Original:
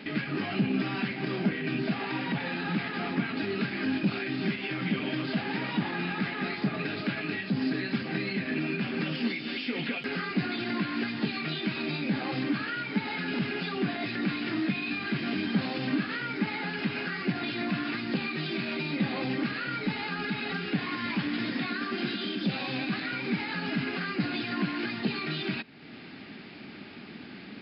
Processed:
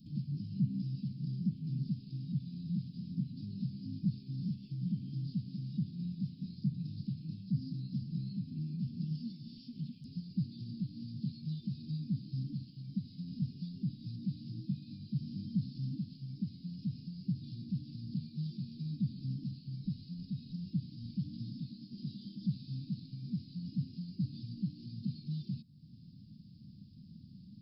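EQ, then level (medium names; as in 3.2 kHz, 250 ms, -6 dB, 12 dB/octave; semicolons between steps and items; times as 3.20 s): inverse Chebyshev band-stop 520–2000 Hz, stop band 70 dB; bass shelf 140 Hz -4.5 dB; treble shelf 2.2 kHz -7 dB; +6.0 dB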